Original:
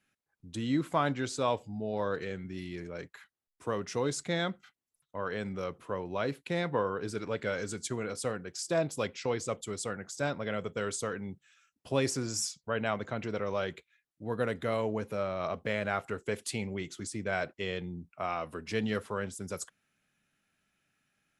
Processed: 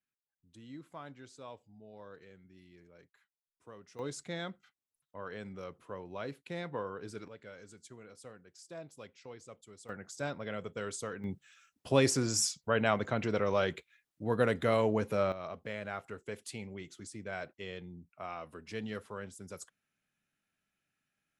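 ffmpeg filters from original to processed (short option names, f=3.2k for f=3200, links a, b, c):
-af "asetnsamples=n=441:p=0,asendcmd='3.99 volume volume -8dB;7.28 volume volume -17dB;9.89 volume volume -5dB;11.24 volume volume 3dB;15.32 volume volume -8dB',volume=-18.5dB"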